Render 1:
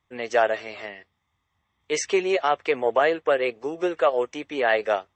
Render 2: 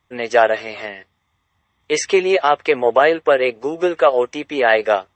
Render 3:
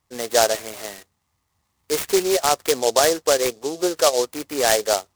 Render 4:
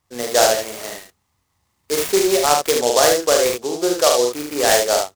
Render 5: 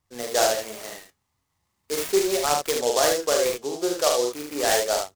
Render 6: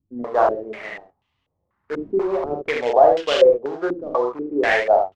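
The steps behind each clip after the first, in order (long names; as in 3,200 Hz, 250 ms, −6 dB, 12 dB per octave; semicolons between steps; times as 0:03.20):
dynamic equaliser 6,700 Hz, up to −5 dB, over −57 dBFS, Q 5.2; level +7 dB
short delay modulated by noise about 5,300 Hz, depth 0.1 ms; level −4 dB
ambience of single reflections 41 ms −5 dB, 74 ms −4.5 dB; level +1 dB
flanger 0.39 Hz, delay 0.1 ms, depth 8 ms, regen +74%; level −2 dB
low-pass on a step sequencer 4.1 Hz 270–3,000 Hz; level +1 dB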